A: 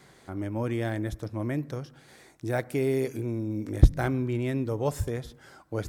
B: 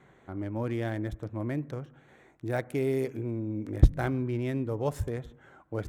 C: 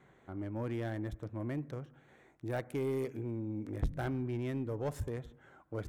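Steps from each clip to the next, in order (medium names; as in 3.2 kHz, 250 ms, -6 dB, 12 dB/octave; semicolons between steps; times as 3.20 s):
local Wiener filter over 9 samples; trim -2 dB
saturation -22 dBFS, distortion -6 dB; trim -4.5 dB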